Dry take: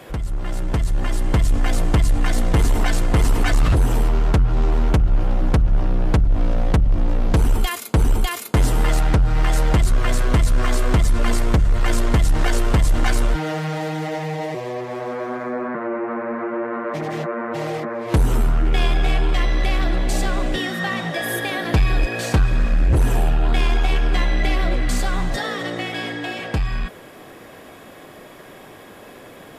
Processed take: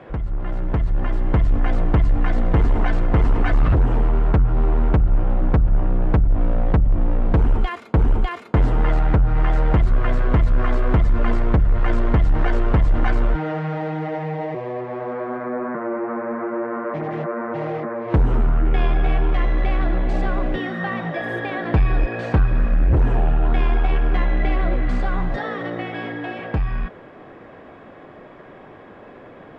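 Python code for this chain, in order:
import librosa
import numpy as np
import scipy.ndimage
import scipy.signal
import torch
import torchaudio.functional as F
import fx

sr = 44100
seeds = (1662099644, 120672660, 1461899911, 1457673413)

y = scipy.signal.sosfilt(scipy.signal.butter(2, 1800.0, 'lowpass', fs=sr, output='sos'), x)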